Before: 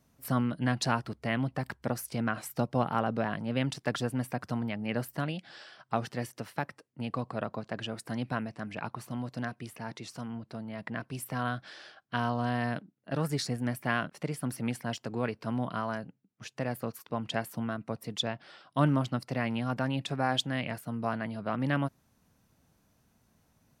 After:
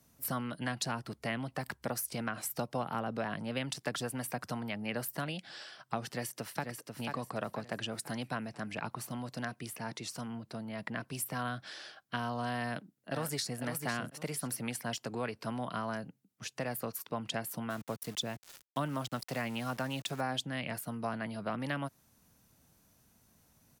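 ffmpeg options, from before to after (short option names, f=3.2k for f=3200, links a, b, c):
-filter_complex "[0:a]asplit=2[a][b];[b]afade=t=in:st=6.06:d=0.01,afade=t=out:st=6.66:d=0.01,aecho=0:1:490|980|1470|1960|2450:0.473151|0.189261|0.0757042|0.0302817|0.0121127[c];[a][c]amix=inputs=2:normalize=0,asplit=2[d][e];[e]afade=t=in:st=12.65:d=0.01,afade=t=out:st=13.59:d=0.01,aecho=0:1:500|1000:0.421697|0.0632545[f];[d][f]amix=inputs=2:normalize=0,asplit=3[g][h][i];[g]afade=t=out:st=17.69:d=0.02[j];[h]aeval=exprs='val(0)*gte(abs(val(0)),0.00473)':c=same,afade=t=in:st=17.69:d=0.02,afade=t=out:st=20.2:d=0.02[k];[i]afade=t=in:st=20.2:d=0.02[l];[j][k][l]amix=inputs=3:normalize=0,aemphasis=mode=production:type=cd,acrossover=split=96|470[m][n][o];[m]acompressor=threshold=-59dB:ratio=4[p];[n]acompressor=threshold=-39dB:ratio=4[q];[o]acompressor=threshold=-34dB:ratio=4[r];[p][q][r]amix=inputs=3:normalize=0"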